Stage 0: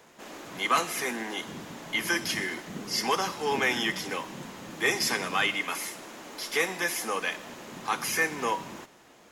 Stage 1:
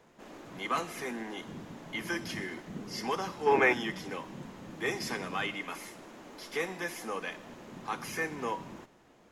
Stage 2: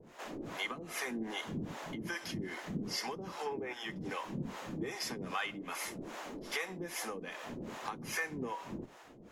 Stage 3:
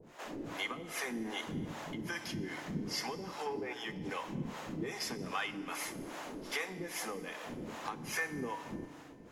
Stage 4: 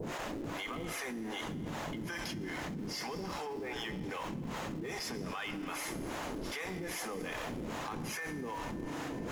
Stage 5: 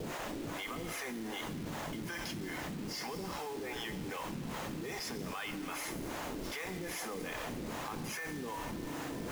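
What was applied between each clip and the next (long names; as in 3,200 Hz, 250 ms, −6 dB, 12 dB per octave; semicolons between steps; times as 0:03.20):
spectral tilt −2 dB per octave; gain on a spectral selection 0:03.46–0:03.73, 290–2,700 Hz +9 dB; level −6.5 dB
downward compressor 6 to 1, threshold −42 dBFS, peak gain reduction 20 dB; two-band tremolo in antiphase 2.5 Hz, depth 100%, crossover 490 Hz; level +10 dB
feedback delay network reverb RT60 2.5 s, low-frequency decay 1.05×, high-frequency decay 0.85×, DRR 12.5 dB
in parallel at −11.5 dB: comparator with hysteresis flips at −40 dBFS; on the sum: envelope flattener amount 100%; level −8 dB
bit-depth reduction 8 bits, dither none; level −1 dB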